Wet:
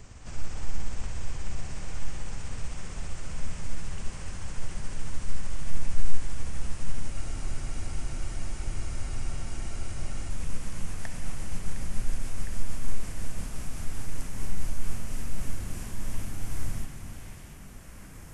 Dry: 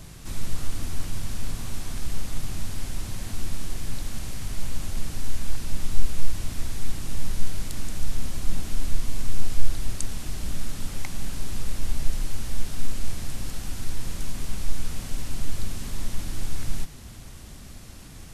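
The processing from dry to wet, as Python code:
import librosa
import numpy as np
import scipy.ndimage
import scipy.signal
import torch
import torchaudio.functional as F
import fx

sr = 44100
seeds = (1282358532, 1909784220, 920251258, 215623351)

p1 = fx.pitch_glide(x, sr, semitones=-7.5, runs='ending unshifted')
p2 = fx.peak_eq(p1, sr, hz=3900.0, db=-11.0, octaves=0.8)
p3 = p2 + fx.echo_stepped(p2, sr, ms=709, hz=3000.0, octaves=-0.7, feedback_pct=70, wet_db=-5.0, dry=0)
p4 = fx.rev_schroeder(p3, sr, rt60_s=3.4, comb_ms=31, drr_db=5.5)
p5 = fx.spec_freeze(p4, sr, seeds[0], at_s=7.15, hold_s=3.15)
y = F.gain(torch.from_numpy(p5), -2.0).numpy()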